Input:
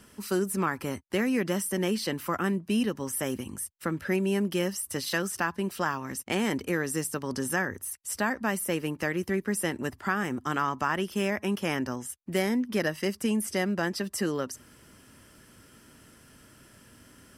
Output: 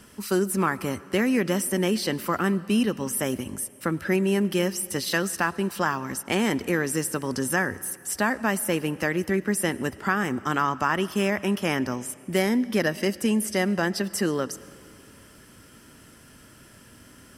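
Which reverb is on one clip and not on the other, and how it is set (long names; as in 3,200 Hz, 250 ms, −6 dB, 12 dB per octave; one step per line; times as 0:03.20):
comb and all-pass reverb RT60 2.3 s, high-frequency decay 0.85×, pre-delay 65 ms, DRR 18.5 dB
level +4 dB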